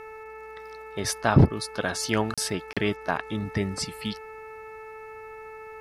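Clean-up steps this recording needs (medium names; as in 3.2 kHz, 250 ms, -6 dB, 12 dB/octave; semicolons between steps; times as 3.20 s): de-hum 437.9 Hz, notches 6; band-stop 1.3 kHz, Q 30; interpolate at 2.34/2.73 s, 36 ms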